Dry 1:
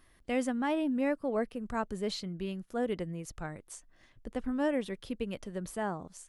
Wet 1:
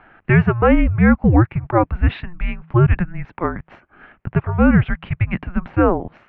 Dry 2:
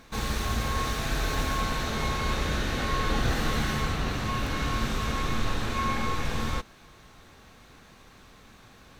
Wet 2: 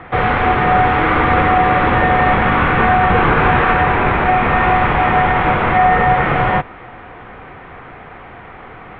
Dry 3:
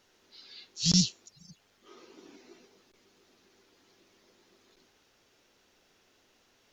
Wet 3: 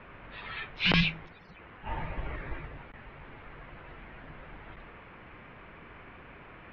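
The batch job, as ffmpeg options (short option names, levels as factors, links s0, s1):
-af "bandreject=f=62.88:t=h:w=4,bandreject=f=125.76:t=h:w=4,bandreject=f=188.64:t=h:w=4,highpass=f=340:t=q:w=0.5412,highpass=f=340:t=q:w=1.307,lowpass=f=2700:t=q:w=0.5176,lowpass=f=2700:t=q:w=0.7071,lowpass=f=2700:t=q:w=1.932,afreqshift=-350,alimiter=level_in=15:limit=0.891:release=50:level=0:latency=1,volume=0.75"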